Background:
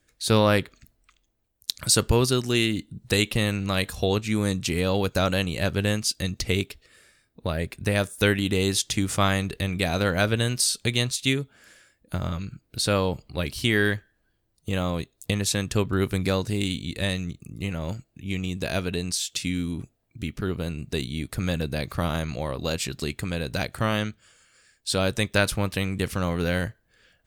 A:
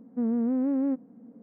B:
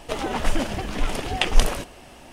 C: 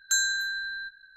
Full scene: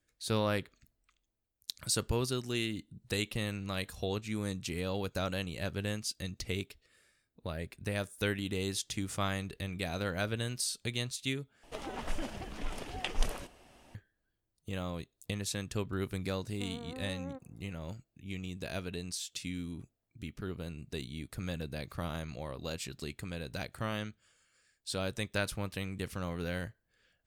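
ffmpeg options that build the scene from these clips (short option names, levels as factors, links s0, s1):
-filter_complex "[0:a]volume=0.266[s0];[1:a]highpass=720[s1];[s0]asplit=2[s2][s3];[s2]atrim=end=11.634[s4];[2:a]atrim=end=2.32,asetpts=PTS-STARTPTS,volume=0.2[s5];[s3]atrim=start=13.946[s6];[s1]atrim=end=1.42,asetpts=PTS-STARTPTS,volume=0.708,afade=t=in:d=0.004:c=hsin,afade=t=out:st=1.416:d=0.004:c=hsin,adelay=16430[s7];[s4][s5]acrossfade=d=0.004:c1=hsin:c2=hsin[s8];[s8][s6]acrossfade=d=0.004:c1=hsin:c2=hsin[s9];[s9][s7]amix=inputs=2:normalize=0"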